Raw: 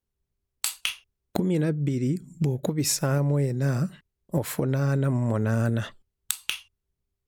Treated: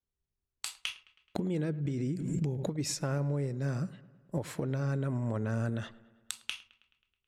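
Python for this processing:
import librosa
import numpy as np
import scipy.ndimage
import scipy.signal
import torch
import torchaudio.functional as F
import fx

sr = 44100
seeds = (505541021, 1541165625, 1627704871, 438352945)

y = scipy.signal.sosfilt(scipy.signal.butter(2, 8000.0, 'lowpass', fs=sr, output='sos'), x)
y = fx.echo_wet_lowpass(y, sr, ms=107, feedback_pct=60, hz=2800.0, wet_db=-19.5)
y = fx.pre_swell(y, sr, db_per_s=31.0, at=(1.85, 2.77))
y = y * 10.0 ** (-8.0 / 20.0)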